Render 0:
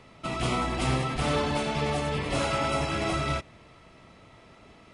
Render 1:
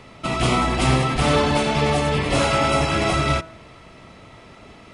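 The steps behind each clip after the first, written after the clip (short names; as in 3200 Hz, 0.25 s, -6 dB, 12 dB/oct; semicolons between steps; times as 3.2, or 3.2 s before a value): de-hum 163 Hz, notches 11; gain +8.5 dB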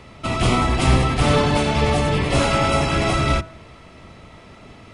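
octaver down 1 oct, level 0 dB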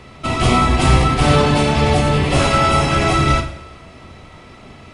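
two-slope reverb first 0.55 s, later 1.9 s, DRR 4 dB; gain +2 dB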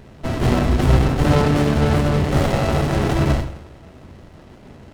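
running maximum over 33 samples; gain -1 dB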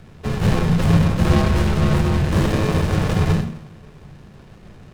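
frequency shift -230 Hz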